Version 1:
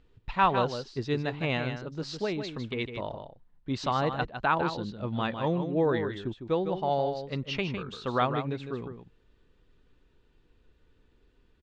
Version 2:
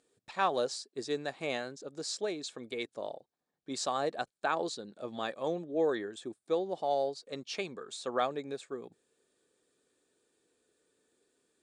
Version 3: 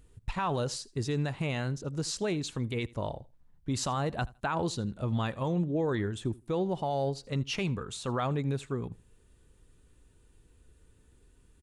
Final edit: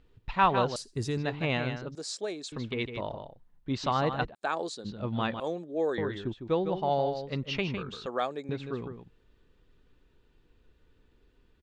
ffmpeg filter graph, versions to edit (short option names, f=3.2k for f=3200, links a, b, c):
-filter_complex "[1:a]asplit=4[a][b][c][d];[0:a]asplit=6[e][f][g][h][i][j];[e]atrim=end=0.762[k];[2:a]atrim=start=0.758:end=1.172[l];[f]atrim=start=1.168:end=1.952[m];[a]atrim=start=1.948:end=2.522[n];[g]atrim=start=2.518:end=4.35[o];[b]atrim=start=4.33:end=4.86[p];[h]atrim=start=4.84:end=5.402[q];[c]atrim=start=5.398:end=5.982[r];[i]atrim=start=5.978:end=8.062[s];[d]atrim=start=8.058:end=8.492[t];[j]atrim=start=8.488[u];[k][l]acrossfade=d=0.004:c1=hsin:c2=hsin[v];[v][m]acrossfade=d=0.004:c1=hsin:c2=hsin[w];[w][n]acrossfade=d=0.004:c1=hsin:c2=hsin[x];[x][o]acrossfade=d=0.004:c1=hsin:c2=hsin[y];[y][p]acrossfade=d=0.02:c1=tri:c2=tri[z];[z][q]acrossfade=d=0.02:c1=tri:c2=tri[aa];[aa][r]acrossfade=d=0.004:c1=hsin:c2=hsin[ab];[ab][s]acrossfade=d=0.004:c1=hsin:c2=hsin[ac];[ac][t]acrossfade=d=0.004:c1=hsin:c2=hsin[ad];[ad][u]acrossfade=d=0.004:c1=hsin:c2=hsin"